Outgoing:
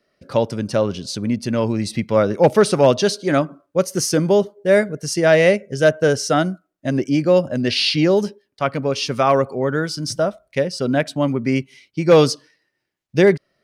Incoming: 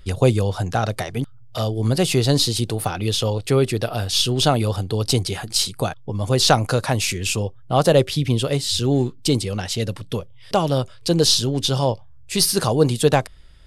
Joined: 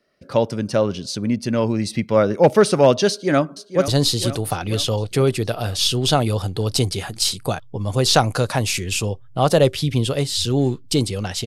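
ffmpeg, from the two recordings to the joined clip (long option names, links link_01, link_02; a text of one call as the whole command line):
ffmpeg -i cue0.wav -i cue1.wav -filter_complex "[0:a]apad=whole_dur=11.46,atrim=end=11.46,atrim=end=3.882[link_01];[1:a]atrim=start=2.218:end=9.8[link_02];[link_01][link_02]acrossfade=duration=0.004:curve1=hsin:curve2=hsin,asplit=2[link_03][link_04];[link_04]afade=type=in:start_time=3.09:duration=0.01,afade=type=out:start_time=3.88:duration=0.01,aecho=0:1:470|940|1410|1880|2350|2820|3290:0.266073|0.159644|0.0957861|0.0574717|0.034483|0.0206898|0.0124139[link_05];[link_03][link_05]amix=inputs=2:normalize=0" out.wav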